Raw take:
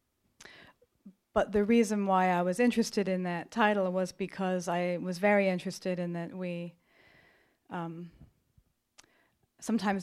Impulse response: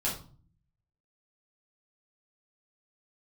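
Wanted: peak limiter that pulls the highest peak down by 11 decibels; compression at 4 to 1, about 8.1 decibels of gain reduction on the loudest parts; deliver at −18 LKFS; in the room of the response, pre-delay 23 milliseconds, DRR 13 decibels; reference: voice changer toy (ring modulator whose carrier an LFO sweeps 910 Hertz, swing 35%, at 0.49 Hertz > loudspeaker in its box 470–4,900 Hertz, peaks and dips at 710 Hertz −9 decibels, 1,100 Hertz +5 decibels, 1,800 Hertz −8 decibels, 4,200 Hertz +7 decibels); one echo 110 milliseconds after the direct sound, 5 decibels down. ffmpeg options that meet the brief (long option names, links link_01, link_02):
-filter_complex "[0:a]acompressor=threshold=-30dB:ratio=4,alimiter=level_in=5dB:limit=-24dB:level=0:latency=1,volume=-5dB,aecho=1:1:110:0.562,asplit=2[link_01][link_02];[1:a]atrim=start_sample=2205,adelay=23[link_03];[link_02][link_03]afir=irnorm=-1:irlink=0,volume=-19dB[link_04];[link_01][link_04]amix=inputs=2:normalize=0,aeval=exprs='val(0)*sin(2*PI*910*n/s+910*0.35/0.49*sin(2*PI*0.49*n/s))':channel_layout=same,highpass=470,equalizer=frequency=710:width_type=q:width=4:gain=-9,equalizer=frequency=1100:width_type=q:width=4:gain=5,equalizer=frequency=1800:width_type=q:width=4:gain=-8,equalizer=frequency=4200:width_type=q:width=4:gain=7,lowpass=frequency=4900:width=0.5412,lowpass=frequency=4900:width=1.3066,volume=23.5dB"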